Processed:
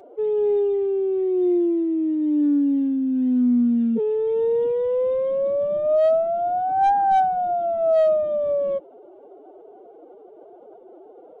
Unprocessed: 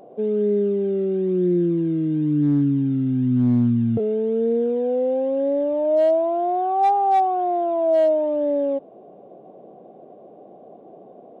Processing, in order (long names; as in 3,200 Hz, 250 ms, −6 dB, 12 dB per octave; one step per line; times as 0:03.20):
phase-vocoder pitch shift with formants kept +12 semitones
downsampling to 22,050 Hz